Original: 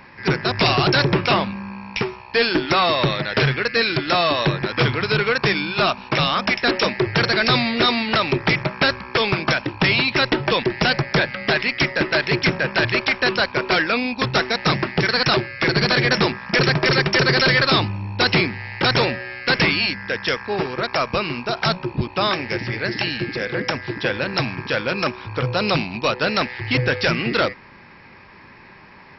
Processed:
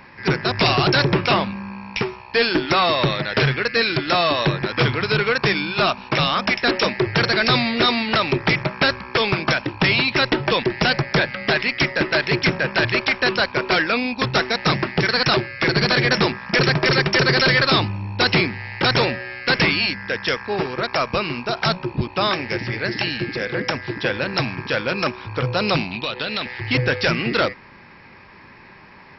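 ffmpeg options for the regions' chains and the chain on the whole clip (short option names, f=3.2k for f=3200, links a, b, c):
-filter_complex "[0:a]asettb=1/sr,asplit=3[a][b][c];[a]atrim=end=25.914[d];[b]atrim=start=25.91:end=26.46,asetpts=PTS-STARTPTS,afade=t=in:d=0.004:c=qsin,afade=t=out:st=0.546:d=0.004:c=qsin,acompressor=threshold=-24dB:ratio=10:attack=3.2:release=140:knee=1:detection=peak,lowpass=f=3.6k:t=q:w=3.8[e];[c]atrim=start=26.456[f];[d][e]acrossfade=d=0.004:c1=hsin:c2=qsin[g];[g][f]acrossfade=d=0.004:c1=qsin:c2=hsin"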